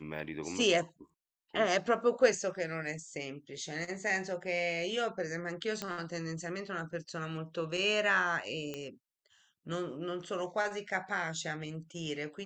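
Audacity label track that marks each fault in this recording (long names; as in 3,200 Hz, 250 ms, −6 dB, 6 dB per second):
5.820000	5.820000	click −20 dBFS
8.740000	8.740000	click −24 dBFS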